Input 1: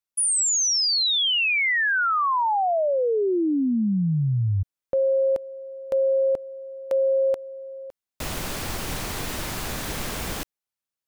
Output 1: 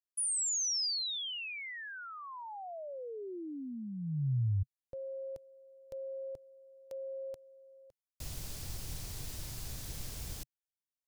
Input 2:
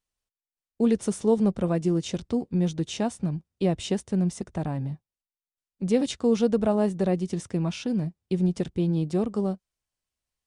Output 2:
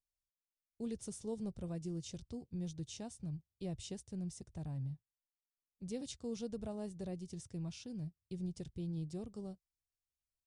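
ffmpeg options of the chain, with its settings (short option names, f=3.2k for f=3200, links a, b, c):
-af "firequalizer=gain_entry='entry(130,0);entry(190,-11);entry(1200,-16);entry(4900,-3)':delay=0.05:min_phase=1,volume=-8dB"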